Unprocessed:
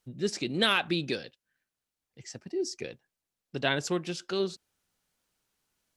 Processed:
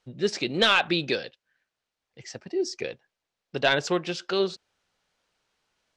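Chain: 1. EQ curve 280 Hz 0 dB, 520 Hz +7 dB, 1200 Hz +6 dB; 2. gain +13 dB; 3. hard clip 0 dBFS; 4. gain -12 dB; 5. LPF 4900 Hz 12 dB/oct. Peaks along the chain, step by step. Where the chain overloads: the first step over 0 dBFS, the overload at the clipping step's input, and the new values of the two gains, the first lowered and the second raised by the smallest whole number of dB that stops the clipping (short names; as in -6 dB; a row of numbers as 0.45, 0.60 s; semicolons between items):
-5.5, +7.5, 0.0, -12.0, -11.0 dBFS; step 2, 7.5 dB; step 2 +5 dB, step 4 -4 dB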